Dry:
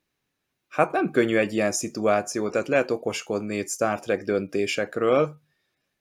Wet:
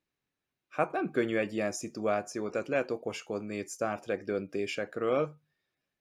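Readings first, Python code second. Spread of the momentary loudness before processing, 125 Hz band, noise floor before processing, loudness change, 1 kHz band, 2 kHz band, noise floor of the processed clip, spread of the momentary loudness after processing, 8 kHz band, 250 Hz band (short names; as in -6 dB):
6 LU, -8.0 dB, -80 dBFS, -8.0 dB, -8.0 dB, -8.5 dB, under -85 dBFS, 7 LU, -11.5 dB, -8.0 dB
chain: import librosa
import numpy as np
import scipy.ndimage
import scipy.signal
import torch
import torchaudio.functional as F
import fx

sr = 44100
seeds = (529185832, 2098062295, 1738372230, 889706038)

y = fx.high_shelf(x, sr, hz=6400.0, db=-6.5)
y = y * librosa.db_to_amplitude(-8.0)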